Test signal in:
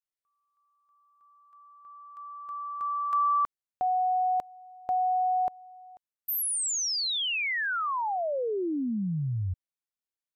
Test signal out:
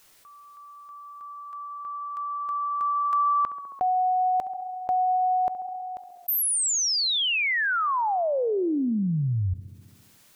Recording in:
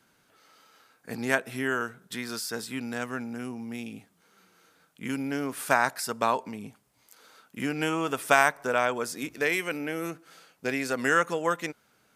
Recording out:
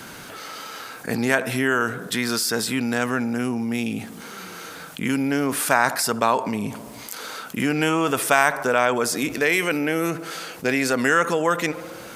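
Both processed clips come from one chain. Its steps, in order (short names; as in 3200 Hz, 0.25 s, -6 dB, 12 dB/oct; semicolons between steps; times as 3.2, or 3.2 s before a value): tape echo 69 ms, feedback 75%, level -22 dB, low-pass 1500 Hz; fast leveller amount 50%; gain +2 dB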